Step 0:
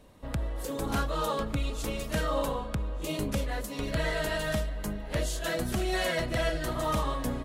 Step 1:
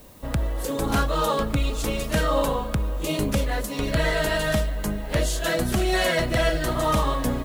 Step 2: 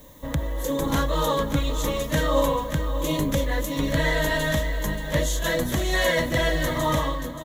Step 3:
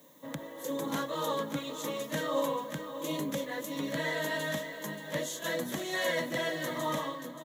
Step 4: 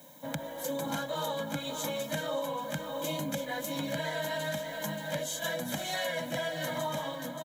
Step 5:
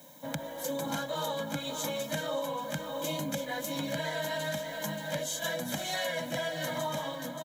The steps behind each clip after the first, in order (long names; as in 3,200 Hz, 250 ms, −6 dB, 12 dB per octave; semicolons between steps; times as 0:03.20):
background noise blue −61 dBFS; level +7 dB
fade-out on the ending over 0.55 s; EQ curve with evenly spaced ripples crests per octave 1.1, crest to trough 9 dB; single-tap delay 580 ms −10.5 dB; level −1.5 dB
high-pass filter 170 Hz 24 dB per octave; level −8.5 dB
comb filter 1.3 ms, depth 87%; downward compressor, threshold −34 dBFS, peak gain reduction 10 dB; level +3.5 dB
parametric band 5,400 Hz +2.5 dB